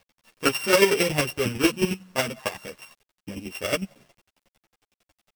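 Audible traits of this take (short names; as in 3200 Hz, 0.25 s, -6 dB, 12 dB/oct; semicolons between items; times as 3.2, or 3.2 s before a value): a buzz of ramps at a fixed pitch in blocks of 16 samples; chopped level 11 Hz, depth 60%, duty 20%; a quantiser's noise floor 10-bit, dither none; a shimmering, thickened sound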